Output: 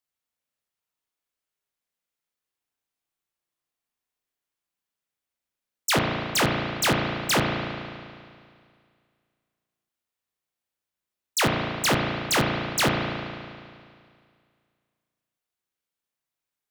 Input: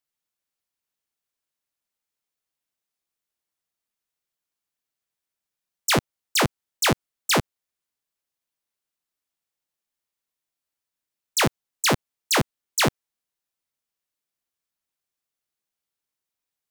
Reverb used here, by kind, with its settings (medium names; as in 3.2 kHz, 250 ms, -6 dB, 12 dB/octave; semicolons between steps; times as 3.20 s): spring tank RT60 2.1 s, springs 35 ms, chirp 45 ms, DRR -0.5 dB; trim -2.5 dB